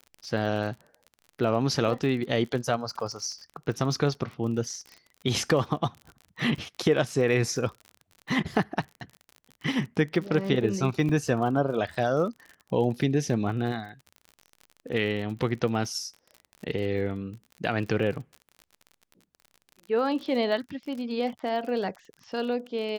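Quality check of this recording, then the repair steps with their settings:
crackle 44 per s -36 dBFS
11.09 s: dropout 3.3 ms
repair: de-click; interpolate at 11.09 s, 3.3 ms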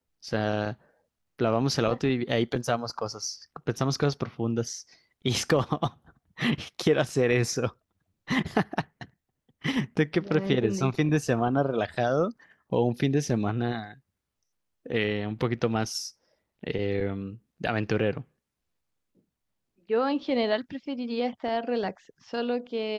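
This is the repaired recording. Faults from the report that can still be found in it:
nothing left

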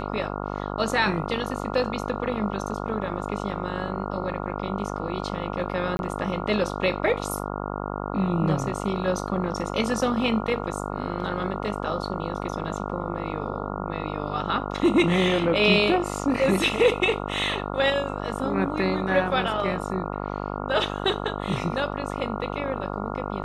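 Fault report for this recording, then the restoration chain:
buzz 50 Hz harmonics 28 -31 dBFS
5.97–5.99 s: dropout 21 ms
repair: de-hum 50 Hz, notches 28; interpolate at 5.97 s, 21 ms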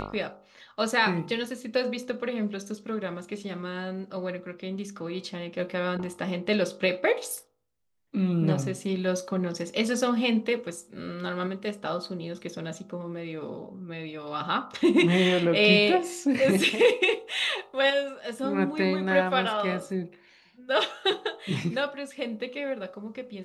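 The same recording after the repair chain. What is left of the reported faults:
nothing left

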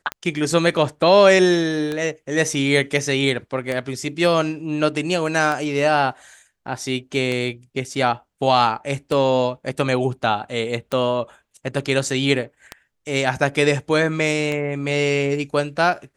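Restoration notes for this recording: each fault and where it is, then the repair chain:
tick 33 1/3 rpm -11 dBFS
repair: de-click

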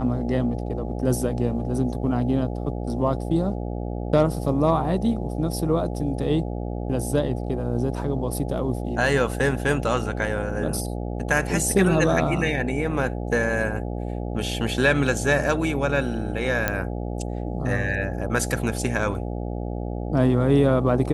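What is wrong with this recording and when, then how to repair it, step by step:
buzz 60 Hz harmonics 14 -29 dBFS
16.68 s: pop -7 dBFS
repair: de-click; de-hum 60 Hz, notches 14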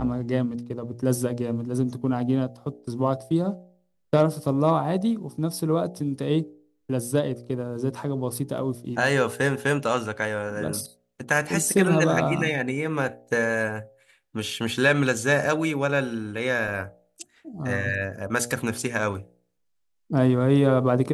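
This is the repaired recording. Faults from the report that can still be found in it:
nothing left

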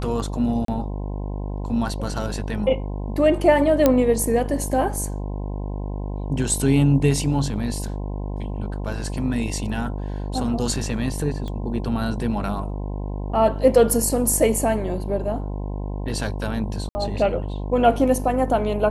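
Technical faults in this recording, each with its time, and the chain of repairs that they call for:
buzz 50 Hz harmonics 21 -28 dBFS
0.65–0.68 s: dropout 33 ms
3.86 s: pop -3 dBFS
11.48 s: pop -21 dBFS
16.89–16.95 s: dropout 60 ms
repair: de-click; de-hum 50 Hz, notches 21; interpolate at 0.65 s, 33 ms; interpolate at 16.89 s, 60 ms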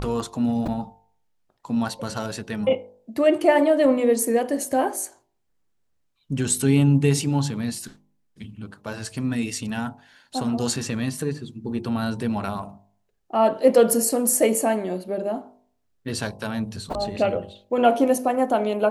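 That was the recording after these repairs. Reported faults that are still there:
nothing left

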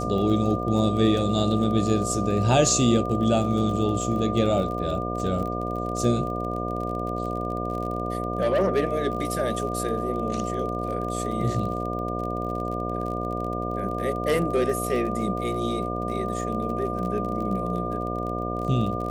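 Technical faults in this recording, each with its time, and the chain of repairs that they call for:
buzz 60 Hz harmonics 12 -30 dBFS
crackle 33 per s -32 dBFS
whine 1.2 kHz -31 dBFS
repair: de-click; band-stop 1.2 kHz, Q 30; de-hum 60 Hz, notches 12

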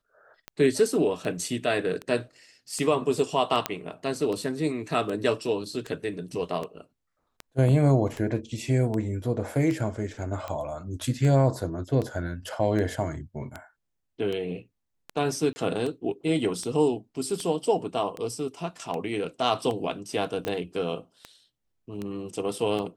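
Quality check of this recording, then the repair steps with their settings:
tick 78 rpm -20 dBFS
3.66 s: pop -8 dBFS
15.53–15.56 s: dropout 30 ms
20.45 s: pop -17 dBFS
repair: de-click; interpolate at 15.53 s, 30 ms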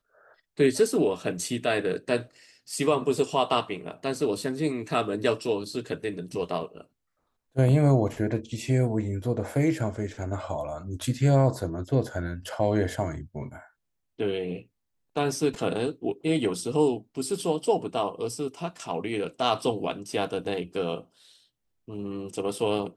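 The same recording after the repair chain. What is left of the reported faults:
20.45 s: pop

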